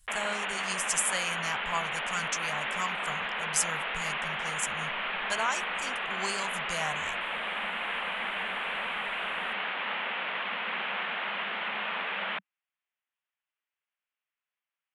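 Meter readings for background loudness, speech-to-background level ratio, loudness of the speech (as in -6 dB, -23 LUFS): -32.0 LUFS, -2.0 dB, -34.0 LUFS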